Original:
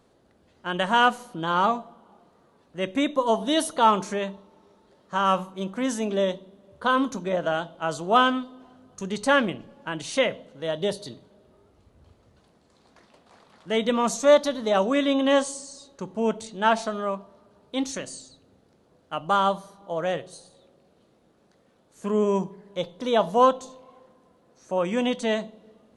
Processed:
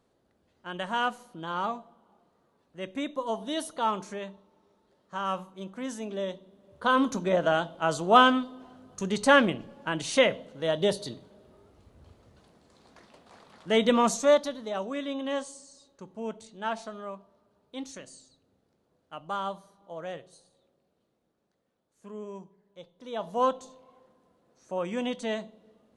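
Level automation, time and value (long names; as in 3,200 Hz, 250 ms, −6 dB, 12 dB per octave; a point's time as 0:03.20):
0:06.21 −9 dB
0:07.16 +1 dB
0:14.00 +1 dB
0:14.71 −11 dB
0:20.19 −11 dB
0:22.43 −18.5 dB
0:22.93 −18.5 dB
0:23.47 −6.5 dB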